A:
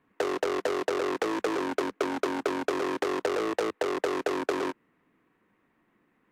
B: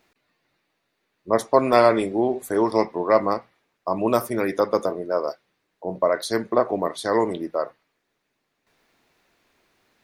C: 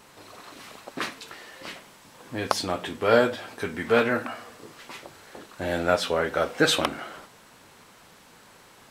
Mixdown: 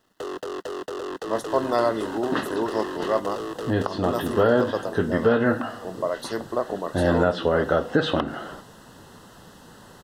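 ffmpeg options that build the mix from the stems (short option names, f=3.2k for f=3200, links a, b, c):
-filter_complex "[0:a]acrusher=bits=10:mix=0:aa=0.000001,asoftclip=type=tanh:threshold=-28dB,volume=0.5dB[a];[1:a]volume=-6dB[b];[2:a]acrossover=split=3800[c][d];[d]acompressor=threshold=-55dB:ratio=4:attack=1:release=60[e];[c][e]amix=inputs=2:normalize=0,lowshelf=f=440:g=9,adelay=1350,volume=2.5dB[f];[a][b][f]amix=inputs=3:normalize=0,asuperstop=centerf=2300:order=4:qfactor=3.4,alimiter=limit=-8.5dB:level=0:latency=1:release=235"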